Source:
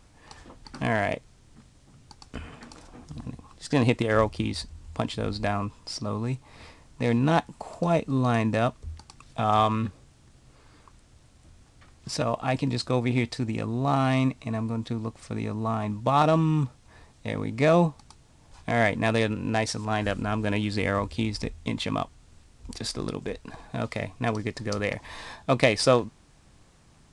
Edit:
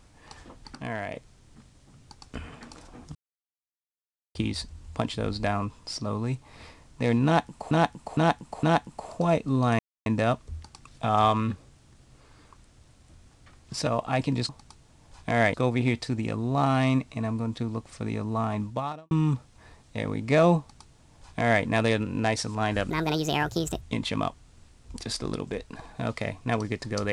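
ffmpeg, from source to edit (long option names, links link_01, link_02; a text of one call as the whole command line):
ffmpeg -i in.wav -filter_complex "[0:a]asplit=14[link_01][link_02][link_03][link_04][link_05][link_06][link_07][link_08][link_09][link_10][link_11][link_12][link_13][link_14];[link_01]atrim=end=0.752[link_15];[link_02]atrim=start=0.748:end=1.152,asetpts=PTS-STARTPTS,volume=-8dB[link_16];[link_03]atrim=start=1.148:end=3.15,asetpts=PTS-STARTPTS,afade=type=out:start_time=1.998:duration=0.004:curve=hsin[link_17];[link_04]atrim=start=3.15:end=4.35,asetpts=PTS-STARTPTS,volume=0[link_18];[link_05]atrim=start=4.35:end=7.712,asetpts=PTS-STARTPTS,afade=type=in:duration=0.004:curve=hsin[link_19];[link_06]atrim=start=7.248:end=7.712[link_20];[link_07]atrim=start=7.248:end=7.712[link_21];[link_08]atrim=start=7.248:end=8.41,asetpts=PTS-STARTPTS,afade=type=out:start_time=1.158:duration=0.004:curve=hsin,apad=pad_dur=0.27[link_22];[link_09]atrim=start=8.41:end=12.842,asetpts=PTS-STARTPTS,afade=type=in:duration=0.004:curve=hsin[link_23];[link_10]atrim=start=17.888:end=18.942[link_24];[link_11]atrim=start=12.838:end=16.41,asetpts=PTS-STARTPTS,afade=type=out:start_time=3.112:duration=0.46:curve=qua[link_25];[link_12]atrim=start=16.41:end=20.204,asetpts=PTS-STARTPTS,afade=type=in:duration=0.004:curve=hsin[link_26];[link_13]atrim=start=20.2:end=21.56,asetpts=PTS-STARTPTS,asetrate=65709,aresample=44100,atrim=end_sample=40252,asetpts=PTS-STARTPTS[link_27];[link_14]atrim=start=21.556[link_28];[link_15][link_16]acrossfade=duration=0.004:curve1=hsin:curve2=hsin[link_29];[link_17][link_18][link_19]concat=n=3:v=0:a=1[link_30];[link_29][link_30]acrossfade=duration=0.004:curve1=hsin:curve2=hsin[link_31];[link_31][link_20]acrossfade=duration=0.004:curve1=hsin:curve2=hsin[link_32];[link_32][link_21]acrossfade=duration=0.004:curve1=hsin:curve2=hsin[link_33];[link_22][link_23]concat=n=2:v=0:a=1[link_34];[link_33][link_34]acrossfade=duration=0.004:curve1=hsin:curve2=hsin[link_35];[link_35][link_24]acrossfade=duration=0.004:curve1=hsin:curve2=hsin[link_36];[link_25][link_26]concat=n=2:v=0:a=1[link_37];[link_36][link_37]acrossfade=duration=0.004:curve1=hsin:curve2=hsin[link_38];[link_38][link_27]acrossfade=duration=0.004:curve1=hsin:curve2=hsin[link_39];[link_39][link_28]acrossfade=duration=0.004:curve1=hsin:curve2=hsin" out.wav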